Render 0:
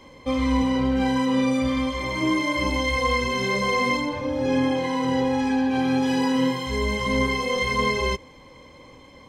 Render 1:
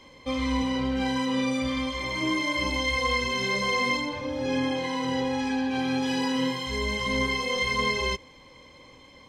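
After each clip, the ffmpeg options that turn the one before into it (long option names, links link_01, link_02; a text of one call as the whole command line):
ffmpeg -i in.wav -af "equalizer=frequency=3900:width_type=o:width=2.3:gain=6.5,volume=-5.5dB" out.wav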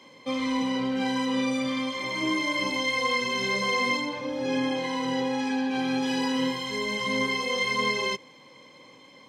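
ffmpeg -i in.wav -af "highpass=frequency=140:width=0.5412,highpass=frequency=140:width=1.3066" out.wav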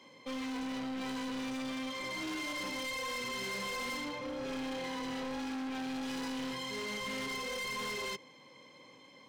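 ffmpeg -i in.wav -af "asoftclip=type=hard:threshold=-31dB,volume=-5.5dB" out.wav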